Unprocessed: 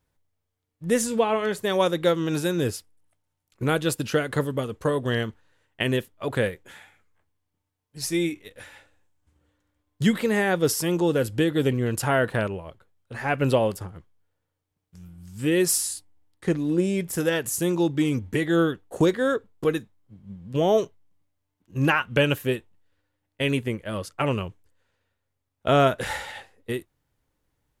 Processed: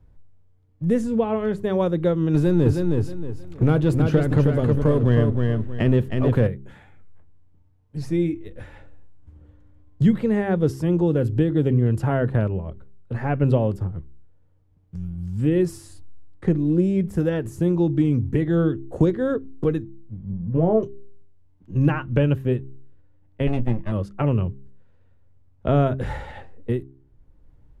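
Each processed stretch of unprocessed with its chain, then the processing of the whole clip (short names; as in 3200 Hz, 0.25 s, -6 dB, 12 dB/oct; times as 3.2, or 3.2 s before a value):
2.34–6.47 power-law curve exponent 0.7 + feedback echo 0.315 s, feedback 22%, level -5 dB
20.31–20.83 LPF 1800 Hz 24 dB/oct + doubler 18 ms -6 dB
23.47–23.92 minimum comb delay 1.1 ms + expander -42 dBFS + doubler 17 ms -10 dB
whole clip: tilt -4.5 dB/oct; de-hum 66.75 Hz, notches 6; three-band squash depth 40%; gain -5 dB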